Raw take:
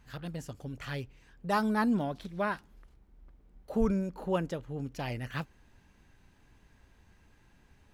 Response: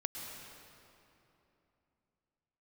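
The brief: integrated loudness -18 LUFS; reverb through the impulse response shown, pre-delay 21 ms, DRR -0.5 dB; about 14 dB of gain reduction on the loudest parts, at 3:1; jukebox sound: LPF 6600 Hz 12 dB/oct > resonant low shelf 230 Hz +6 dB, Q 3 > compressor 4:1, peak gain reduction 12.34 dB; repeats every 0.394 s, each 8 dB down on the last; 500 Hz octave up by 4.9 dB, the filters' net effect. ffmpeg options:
-filter_complex "[0:a]equalizer=f=500:t=o:g=8,acompressor=threshold=-38dB:ratio=3,aecho=1:1:394|788|1182|1576|1970:0.398|0.159|0.0637|0.0255|0.0102,asplit=2[a][b];[1:a]atrim=start_sample=2205,adelay=21[c];[b][c]afir=irnorm=-1:irlink=0,volume=-0.5dB[d];[a][d]amix=inputs=2:normalize=0,lowpass=6.6k,lowshelf=f=230:t=q:w=3:g=6,acompressor=threshold=-35dB:ratio=4,volume=21.5dB"

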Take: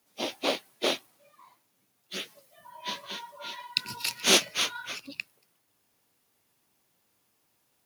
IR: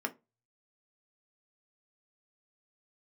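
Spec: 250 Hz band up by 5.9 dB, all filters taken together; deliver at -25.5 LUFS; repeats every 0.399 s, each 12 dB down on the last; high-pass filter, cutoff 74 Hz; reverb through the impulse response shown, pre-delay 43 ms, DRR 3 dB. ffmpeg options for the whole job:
-filter_complex "[0:a]highpass=74,equalizer=f=250:t=o:g=8,aecho=1:1:399|798|1197:0.251|0.0628|0.0157,asplit=2[a][b];[1:a]atrim=start_sample=2205,adelay=43[c];[b][c]afir=irnorm=-1:irlink=0,volume=-7dB[d];[a][d]amix=inputs=2:normalize=0,volume=2dB"

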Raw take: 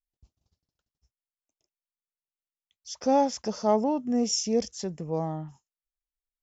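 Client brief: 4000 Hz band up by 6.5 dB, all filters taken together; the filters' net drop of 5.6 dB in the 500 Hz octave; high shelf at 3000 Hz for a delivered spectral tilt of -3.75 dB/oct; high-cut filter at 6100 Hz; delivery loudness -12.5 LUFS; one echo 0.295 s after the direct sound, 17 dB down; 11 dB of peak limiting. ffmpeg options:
-af "lowpass=6.1k,equalizer=f=500:t=o:g=-7,highshelf=f=3k:g=8,equalizer=f=4k:t=o:g=4,alimiter=limit=-20.5dB:level=0:latency=1,aecho=1:1:295:0.141,volume=18dB"

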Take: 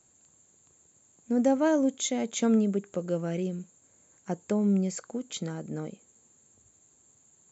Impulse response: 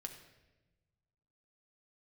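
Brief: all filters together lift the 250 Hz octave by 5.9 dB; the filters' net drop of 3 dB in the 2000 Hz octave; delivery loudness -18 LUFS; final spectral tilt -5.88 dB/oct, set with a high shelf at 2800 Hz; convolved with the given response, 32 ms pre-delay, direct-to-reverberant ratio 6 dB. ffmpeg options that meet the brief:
-filter_complex "[0:a]equalizer=f=250:t=o:g=7,equalizer=f=2k:t=o:g=-6.5,highshelf=f=2.8k:g=6,asplit=2[a][b];[1:a]atrim=start_sample=2205,adelay=32[c];[b][c]afir=irnorm=-1:irlink=0,volume=-2.5dB[d];[a][d]amix=inputs=2:normalize=0,volume=5dB"

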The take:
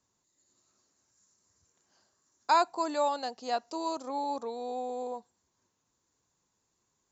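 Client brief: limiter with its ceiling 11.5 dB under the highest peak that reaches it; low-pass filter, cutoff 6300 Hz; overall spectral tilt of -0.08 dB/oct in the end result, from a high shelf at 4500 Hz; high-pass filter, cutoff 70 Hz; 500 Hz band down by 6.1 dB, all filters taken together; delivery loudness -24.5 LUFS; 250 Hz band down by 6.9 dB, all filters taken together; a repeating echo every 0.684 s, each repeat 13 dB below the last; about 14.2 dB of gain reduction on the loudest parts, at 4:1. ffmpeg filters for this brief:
-af "highpass=70,lowpass=6.3k,equalizer=f=250:t=o:g=-6,equalizer=f=500:t=o:g=-7,highshelf=f=4.5k:g=-3.5,acompressor=threshold=-39dB:ratio=4,alimiter=level_in=13dB:limit=-24dB:level=0:latency=1,volume=-13dB,aecho=1:1:684|1368|2052:0.224|0.0493|0.0108,volume=22.5dB"

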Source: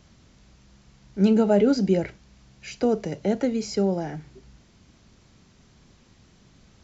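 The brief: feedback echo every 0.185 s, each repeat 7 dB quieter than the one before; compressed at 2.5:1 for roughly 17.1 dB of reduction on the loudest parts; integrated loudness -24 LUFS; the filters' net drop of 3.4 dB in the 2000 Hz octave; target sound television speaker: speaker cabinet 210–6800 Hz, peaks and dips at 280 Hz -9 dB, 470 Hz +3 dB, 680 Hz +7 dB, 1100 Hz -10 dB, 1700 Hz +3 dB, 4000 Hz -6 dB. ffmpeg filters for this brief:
-af "equalizer=f=2k:t=o:g=-5,acompressor=threshold=-42dB:ratio=2.5,highpass=f=210:w=0.5412,highpass=f=210:w=1.3066,equalizer=f=280:t=q:w=4:g=-9,equalizer=f=470:t=q:w=4:g=3,equalizer=f=680:t=q:w=4:g=7,equalizer=f=1.1k:t=q:w=4:g=-10,equalizer=f=1.7k:t=q:w=4:g=3,equalizer=f=4k:t=q:w=4:g=-6,lowpass=f=6.8k:w=0.5412,lowpass=f=6.8k:w=1.3066,aecho=1:1:185|370|555|740|925:0.447|0.201|0.0905|0.0407|0.0183,volume=15.5dB"

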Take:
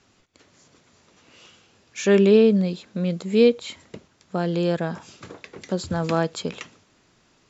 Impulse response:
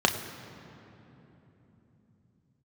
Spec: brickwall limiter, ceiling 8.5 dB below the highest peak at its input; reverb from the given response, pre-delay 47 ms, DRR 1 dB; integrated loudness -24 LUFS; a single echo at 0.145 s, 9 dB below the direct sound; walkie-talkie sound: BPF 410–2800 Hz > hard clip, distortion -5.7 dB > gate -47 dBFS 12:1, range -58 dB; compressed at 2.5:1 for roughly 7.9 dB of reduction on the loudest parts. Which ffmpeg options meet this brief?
-filter_complex "[0:a]acompressor=threshold=-23dB:ratio=2.5,alimiter=limit=-22dB:level=0:latency=1,aecho=1:1:145:0.355,asplit=2[a][b];[1:a]atrim=start_sample=2205,adelay=47[c];[b][c]afir=irnorm=-1:irlink=0,volume=-15.5dB[d];[a][d]amix=inputs=2:normalize=0,highpass=410,lowpass=2.8k,asoftclip=type=hard:threshold=-36dB,agate=range=-58dB:threshold=-47dB:ratio=12,volume=16dB"

